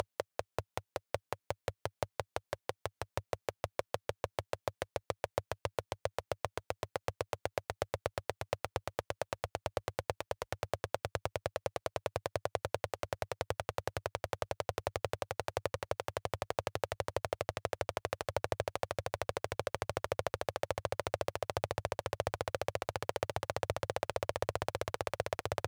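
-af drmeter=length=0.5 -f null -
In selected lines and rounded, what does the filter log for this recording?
Channel 1: DR: 20.0
Overall DR: 20.0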